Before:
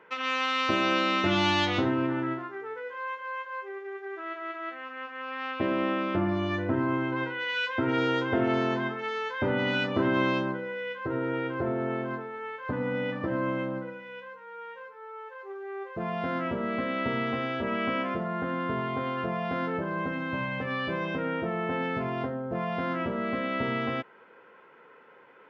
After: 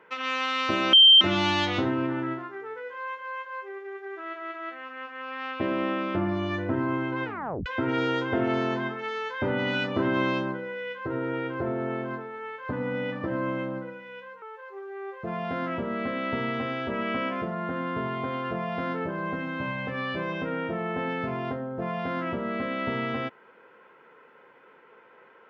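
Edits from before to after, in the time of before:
0.93–1.21 bleep 3140 Hz -10.5 dBFS
7.25 tape stop 0.41 s
14.42–15.15 cut

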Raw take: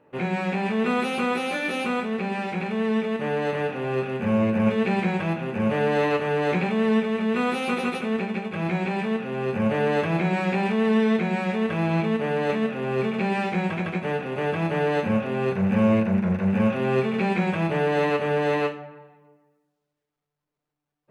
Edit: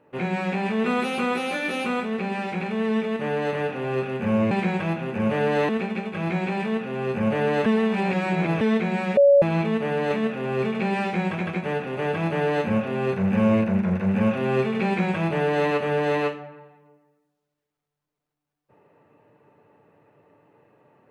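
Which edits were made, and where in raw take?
4.51–4.91 cut
6.09–8.08 cut
10.05–11 reverse
11.56–11.81 bleep 564 Hz -11 dBFS

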